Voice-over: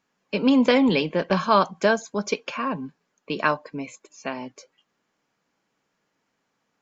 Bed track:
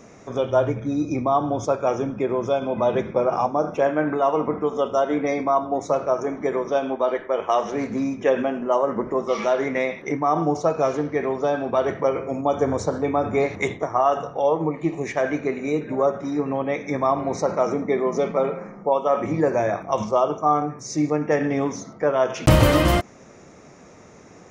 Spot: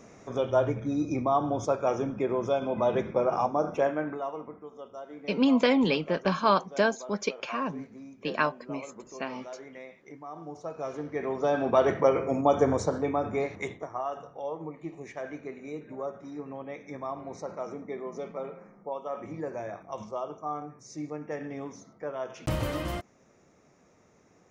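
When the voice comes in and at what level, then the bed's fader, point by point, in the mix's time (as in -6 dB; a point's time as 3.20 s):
4.95 s, -4.5 dB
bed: 3.81 s -5 dB
4.61 s -21.5 dB
10.38 s -21.5 dB
11.67 s -1 dB
12.53 s -1 dB
14.15 s -15 dB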